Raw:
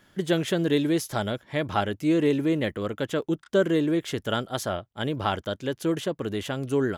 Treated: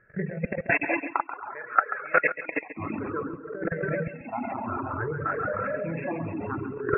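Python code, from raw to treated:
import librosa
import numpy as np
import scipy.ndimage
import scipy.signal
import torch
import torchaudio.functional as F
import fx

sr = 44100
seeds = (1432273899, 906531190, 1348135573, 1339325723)

y = fx.spec_ripple(x, sr, per_octave=0.57, drift_hz=0.57, depth_db=19)
y = fx.rev_gated(y, sr, seeds[0], gate_ms=430, shape='flat', drr_db=-3.5)
y = fx.level_steps(y, sr, step_db=17)
y = fx.dereverb_blind(y, sr, rt60_s=0.92)
y = fx.highpass(y, sr, hz=840.0, slope=12, at=(0.69, 2.76), fade=0.02)
y = fx.dereverb_blind(y, sr, rt60_s=0.83)
y = fx.over_compress(y, sr, threshold_db=-26.0, ratio=-0.5)
y = fx.dynamic_eq(y, sr, hz=1300.0, q=0.73, threshold_db=-39.0, ratio=4.0, max_db=4)
y = fx.brickwall_lowpass(y, sr, high_hz=2700.0)
y = fx.echo_feedback(y, sr, ms=136, feedback_pct=32, wet_db=-12.5)
y = y * librosa.db_to_amplitude(1.5)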